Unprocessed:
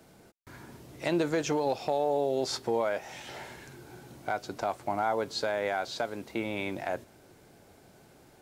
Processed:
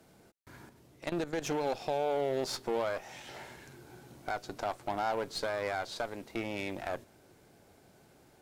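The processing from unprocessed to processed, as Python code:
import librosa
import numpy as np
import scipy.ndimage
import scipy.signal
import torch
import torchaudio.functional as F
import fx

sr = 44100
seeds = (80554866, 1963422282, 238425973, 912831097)

y = fx.level_steps(x, sr, step_db=14, at=(0.69, 1.42))
y = fx.cheby_harmonics(y, sr, harmonics=(8,), levels_db=(-21,), full_scale_db=-16.5)
y = y * 10.0 ** (-4.0 / 20.0)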